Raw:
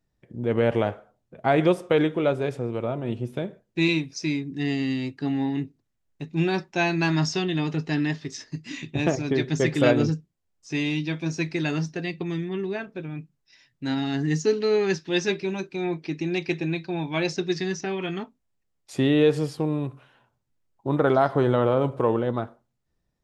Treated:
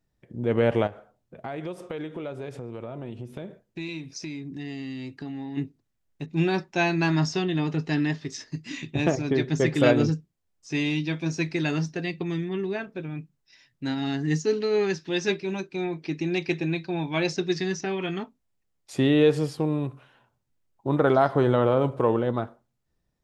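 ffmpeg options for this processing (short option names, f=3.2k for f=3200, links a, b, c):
-filter_complex "[0:a]asplit=3[a][b][c];[a]afade=t=out:st=0.86:d=0.02[d];[b]acompressor=threshold=-33dB:ratio=4:attack=3.2:release=140:knee=1:detection=peak,afade=t=in:st=0.86:d=0.02,afade=t=out:st=5.56:d=0.02[e];[c]afade=t=in:st=5.56:d=0.02[f];[d][e][f]amix=inputs=3:normalize=0,asettb=1/sr,asplit=3[g][h][i];[g]atrim=end=6.264[j];[h]atrim=start=6.26:end=9.76,asetpts=PTS-STARTPTS,afade=t=in:d=0.004:c=qsin,afade=t=out:st=3.496:d=0.004:c=qsin,adynamicequalizer=threshold=0.0141:dfrequency=1900:dqfactor=0.7:tfrequency=1900:tqfactor=0.7:attack=5:release=100:ratio=0.375:range=2.5:mode=cutabove:tftype=highshelf[k];[i]atrim=start=9.756[l];[j][k]acrossfade=d=0.004:c1=hsin:c2=qsin[m];[m][l]acrossfade=d=0.004:c1=qsin:c2=hsin,asettb=1/sr,asplit=3[n][o][p];[n]atrim=end=13.844[q];[o]atrim=start=13.84:end=16.07,asetpts=PTS-STARTPTS,afade=t=in:d=0.004:c=qsin,afade=t=out:st=2.226:d=0.004:c=qsin,tremolo=f=4.1:d=0.34[r];[p]atrim=start=16.066[s];[q][r]acrossfade=d=0.004:c1=hsin:c2=qsin[t];[t][s]acrossfade=d=0.004:c1=qsin:c2=hsin"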